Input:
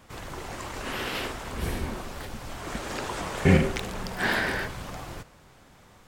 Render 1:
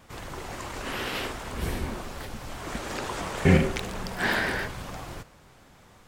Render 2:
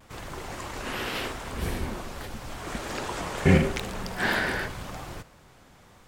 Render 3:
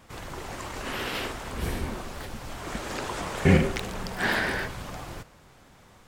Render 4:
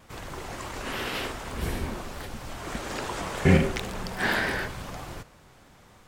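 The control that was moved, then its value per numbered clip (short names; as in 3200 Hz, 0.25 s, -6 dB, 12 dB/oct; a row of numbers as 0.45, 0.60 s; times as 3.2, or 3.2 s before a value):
vibrato, rate: 5.9, 0.84, 14, 3.4 Hz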